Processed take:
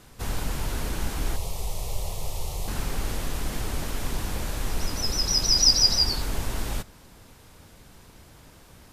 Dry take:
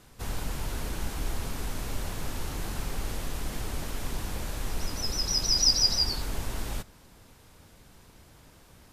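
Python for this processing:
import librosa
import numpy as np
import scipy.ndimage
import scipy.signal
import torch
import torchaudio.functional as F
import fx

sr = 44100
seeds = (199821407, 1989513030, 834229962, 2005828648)

y = fx.fixed_phaser(x, sr, hz=640.0, stages=4, at=(1.36, 2.68))
y = F.gain(torch.from_numpy(y), 4.0).numpy()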